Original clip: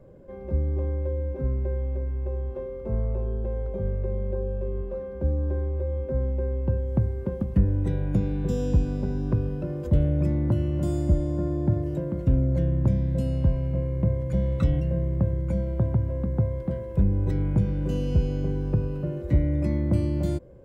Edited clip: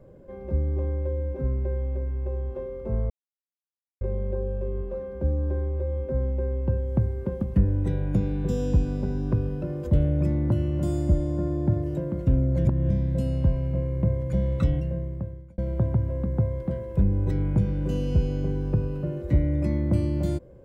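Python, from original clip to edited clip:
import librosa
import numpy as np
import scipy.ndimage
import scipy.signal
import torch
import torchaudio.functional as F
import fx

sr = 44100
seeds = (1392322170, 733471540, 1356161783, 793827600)

y = fx.edit(x, sr, fx.silence(start_s=3.1, length_s=0.91),
    fx.reverse_span(start_s=12.65, length_s=0.25),
    fx.fade_out_span(start_s=14.62, length_s=0.96), tone=tone)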